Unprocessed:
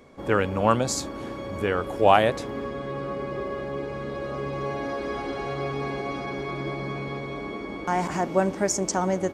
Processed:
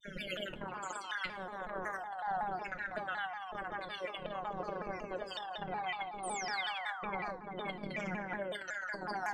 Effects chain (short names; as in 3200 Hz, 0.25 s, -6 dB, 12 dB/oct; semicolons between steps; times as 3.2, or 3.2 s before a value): random spectral dropouts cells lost 79%; flipped gate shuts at -27 dBFS, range -25 dB; EQ curve 710 Hz 0 dB, 1600 Hz +3 dB, 9300 Hz -11 dB; narrowing echo 0.11 s, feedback 73%, band-pass 1200 Hz, level -4 dB; grains 0.1 s, spray 0.1 s, pitch spread up and down by 0 st; robotiser 196 Hz; negative-ratio compressor -56 dBFS, ratio -1; low shelf 140 Hz +9 dB; notch 1200 Hz, Q 8.5; on a send at -4 dB: reverb RT60 0.65 s, pre-delay 3 ms; on the sum: painted sound fall, 6.23–7.37, 510–10000 Hz -59 dBFS; shaped vibrato saw down 5.4 Hz, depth 160 cents; gain +13 dB